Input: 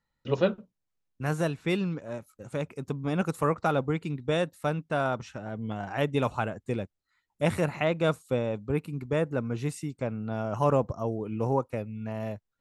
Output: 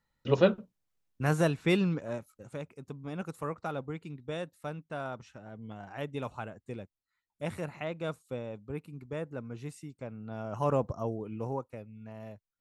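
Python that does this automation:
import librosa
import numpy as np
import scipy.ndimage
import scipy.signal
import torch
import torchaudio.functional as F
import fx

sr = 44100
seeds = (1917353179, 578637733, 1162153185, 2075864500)

y = fx.gain(x, sr, db=fx.line((2.06, 1.5), (2.7, -10.0), (10.1, -10.0), (10.96, -2.0), (11.75, -11.0)))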